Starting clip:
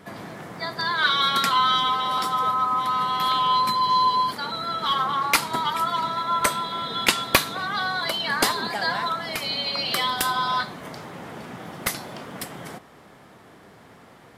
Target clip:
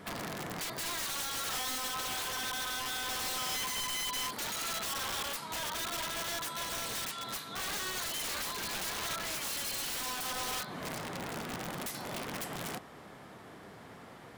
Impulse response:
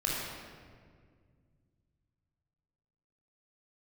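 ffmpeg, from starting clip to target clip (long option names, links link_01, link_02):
-af "acompressor=threshold=-30dB:ratio=8,aeval=exprs='(mod(31.6*val(0)+1,2)-1)/31.6':channel_layout=same,volume=-1.5dB"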